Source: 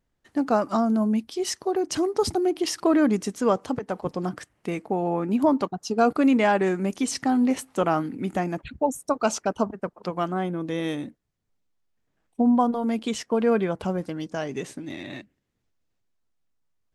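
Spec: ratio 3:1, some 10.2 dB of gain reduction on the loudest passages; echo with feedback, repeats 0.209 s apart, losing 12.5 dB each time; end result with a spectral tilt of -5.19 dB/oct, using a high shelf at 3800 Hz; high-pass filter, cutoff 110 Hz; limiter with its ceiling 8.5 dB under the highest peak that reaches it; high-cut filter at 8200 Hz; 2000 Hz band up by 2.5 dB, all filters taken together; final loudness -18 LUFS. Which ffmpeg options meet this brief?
-af "highpass=110,lowpass=8.2k,equalizer=f=2k:t=o:g=4.5,highshelf=f=3.8k:g=-5.5,acompressor=threshold=-30dB:ratio=3,alimiter=level_in=1.5dB:limit=-24dB:level=0:latency=1,volume=-1.5dB,aecho=1:1:209|418|627:0.237|0.0569|0.0137,volume=17.5dB"

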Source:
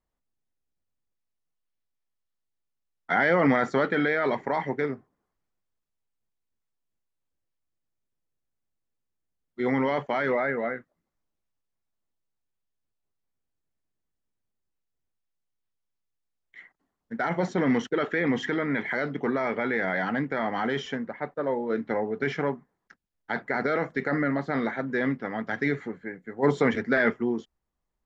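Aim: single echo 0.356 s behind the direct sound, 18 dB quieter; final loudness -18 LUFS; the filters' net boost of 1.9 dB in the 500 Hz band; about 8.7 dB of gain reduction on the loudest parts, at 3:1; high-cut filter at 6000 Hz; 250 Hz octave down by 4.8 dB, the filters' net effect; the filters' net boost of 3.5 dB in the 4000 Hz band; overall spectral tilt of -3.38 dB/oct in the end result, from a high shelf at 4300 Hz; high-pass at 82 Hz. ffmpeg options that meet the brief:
-af "highpass=82,lowpass=6k,equalizer=f=250:t=o:g=-7,equalizer=f=500:t=o:g=4,equalizer=f=4k:t=o:g=3.5,highshelf=f=4.3k:g=3.5,acompressor=threshold=-29dB:ratio=3,aecho=1:1:356:0.126,volume=14.5dB"

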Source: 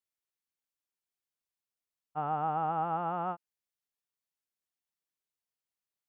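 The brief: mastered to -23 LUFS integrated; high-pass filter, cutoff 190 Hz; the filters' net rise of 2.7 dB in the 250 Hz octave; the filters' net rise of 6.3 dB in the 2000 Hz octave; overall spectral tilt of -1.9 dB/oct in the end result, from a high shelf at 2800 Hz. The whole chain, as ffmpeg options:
-af "highpass=190,equalizer=f=250:t=o:g=8,equalizer=f=2k:t=o:g=8,highshelf=f=2.8k:g=5,volume=8dB"

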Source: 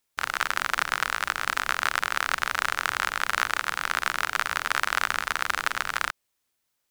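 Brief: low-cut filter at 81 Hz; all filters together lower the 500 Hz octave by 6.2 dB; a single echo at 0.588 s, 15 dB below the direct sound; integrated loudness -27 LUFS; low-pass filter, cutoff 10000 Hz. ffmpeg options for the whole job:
-af "highpass=81,lowpass=10k,equalizer=f=500:t=o:g=-8.5,aecho=1:1:588:0.178"

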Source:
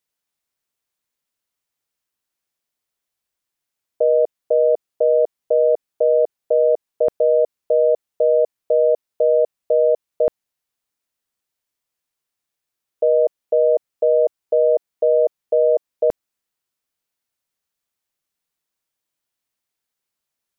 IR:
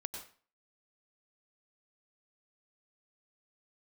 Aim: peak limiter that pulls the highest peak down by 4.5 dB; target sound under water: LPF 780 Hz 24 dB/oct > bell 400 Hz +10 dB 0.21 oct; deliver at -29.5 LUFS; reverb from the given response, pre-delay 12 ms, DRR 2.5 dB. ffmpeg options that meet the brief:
-filter_complex "[0:a]alimiter=limit=-13dB:level=0:latency=1,asplit=2[a][b];[1:a]atrim=start_sample=2205,adelay=12[c];[b][c]afir=irnorm=-1:irlink=0,volume=-1.5dB[d];[a][d]amix=inputs=2:normalize=0,lowpass=f=780:w=0.5412,lowpass=f=780:w=1.3066,equalizer=f=400:t=o:w=0.21:g=10,volume=-7dB"

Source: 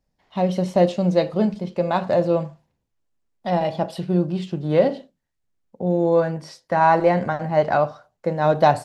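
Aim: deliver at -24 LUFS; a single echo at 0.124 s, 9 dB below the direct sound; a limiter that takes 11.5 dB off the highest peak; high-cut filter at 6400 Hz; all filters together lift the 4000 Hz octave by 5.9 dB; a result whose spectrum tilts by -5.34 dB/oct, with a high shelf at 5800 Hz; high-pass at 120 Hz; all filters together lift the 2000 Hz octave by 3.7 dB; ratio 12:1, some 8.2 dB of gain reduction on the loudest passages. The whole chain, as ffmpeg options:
-af "highpass=120,lowpass=6.4k,equalizer=f=2k:t=o:g=3.5,equalizer=f=4k:t=o:g=3.5,highshelf=f=5.8k:g=9,acompressor=threshold=-18dB:ratio=12,alimiter=limit=-20.5dB:level=0:latency=1,aecho=1:1:124:0.355,volume=6.5dB"

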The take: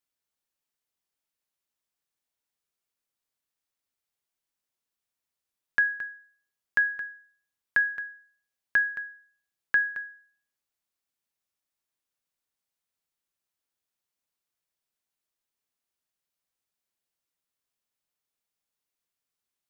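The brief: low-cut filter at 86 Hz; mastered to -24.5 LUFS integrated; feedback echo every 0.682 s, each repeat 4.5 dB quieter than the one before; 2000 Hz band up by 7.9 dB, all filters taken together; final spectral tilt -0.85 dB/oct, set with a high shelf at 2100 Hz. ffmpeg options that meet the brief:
-af "highpass=86,equalizer=f=2k:t=o:g=7,highshelf=f=2.1k:g=6.5,aecho=1:1:682|1364|2046|2728|3410|4092|4774|5456|6138:0.596|0.357|0.214|0.129|0.0772|0.0463|0.0278|0.0167|0.01,volume=-3dB"

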